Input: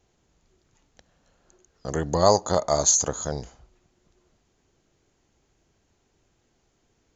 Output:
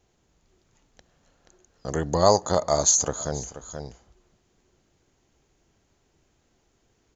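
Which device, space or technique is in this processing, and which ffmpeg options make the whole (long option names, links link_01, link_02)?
ducked delay: -filter_complex "[0:a]asplit=3[link_01][link_02][link_03];[link_02]adelay=480,volume=-6dB[link_04];[link_03]apad=whole_len=336871[link_05];[link_04][link_05]sidechaincompress=threshold=-37dB:ratio=8:attack=11:release=390[link_06];[link_01][link_06]amix=inputs=2:normalize=0"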